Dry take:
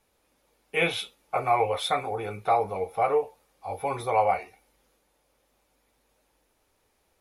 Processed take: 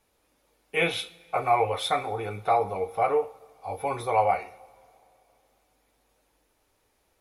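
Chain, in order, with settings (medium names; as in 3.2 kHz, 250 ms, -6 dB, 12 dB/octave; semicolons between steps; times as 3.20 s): two-slope reverb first 0.53 s, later 3 s, from -18 dB, DRR 13.5 dB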